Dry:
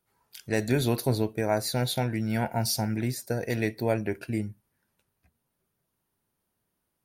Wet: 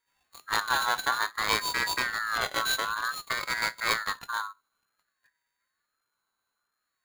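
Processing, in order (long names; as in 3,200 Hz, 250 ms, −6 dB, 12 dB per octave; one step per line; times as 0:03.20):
samples sorted by size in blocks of 16 samples
dynamic equaliser 2,700 Hz, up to +6 dB, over −42 dBFS, Q 0.81
ring modulator whose carrier an LFO sweeps 1,500 Hz, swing 20%, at 0.55 Hz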